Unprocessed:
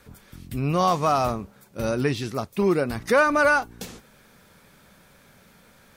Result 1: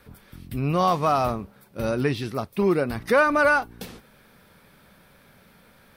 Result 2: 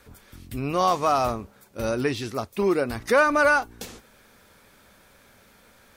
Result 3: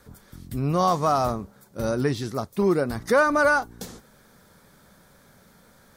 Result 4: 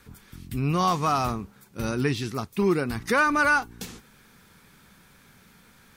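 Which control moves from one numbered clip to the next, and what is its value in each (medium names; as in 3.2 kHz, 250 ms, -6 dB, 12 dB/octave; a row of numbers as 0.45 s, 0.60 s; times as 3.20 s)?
peaking EQ, frequency: 6.9 kHz, 160 Hz, 2.6 kHz, 590 Hz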